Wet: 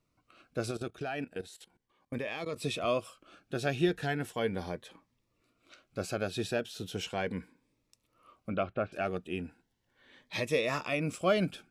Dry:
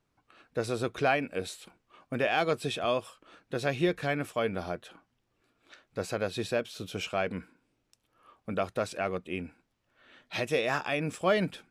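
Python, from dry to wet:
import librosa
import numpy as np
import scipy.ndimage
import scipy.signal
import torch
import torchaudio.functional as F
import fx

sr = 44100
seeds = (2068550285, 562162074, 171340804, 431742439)

y = fx.level_steps(x, sr, step_db=17, at=(0.71, 2.56))
y = fx.lowpass(y, sr, hz=fx.line((8.49, 4400.0), (8.92, 2100.0)), slope=24, at=(8.49, 8.92), fade=0.02)
y = fx.notch_cascade(y, sr, direction='rising', hz=0.37)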